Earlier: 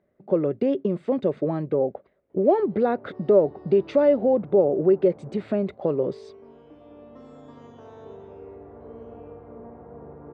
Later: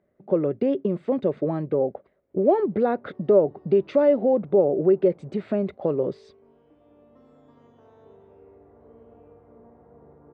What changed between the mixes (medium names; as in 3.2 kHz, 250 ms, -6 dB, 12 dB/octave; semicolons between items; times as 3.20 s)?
background -9.0 dB; master: add treble shelf 5.8 kHz -8 dB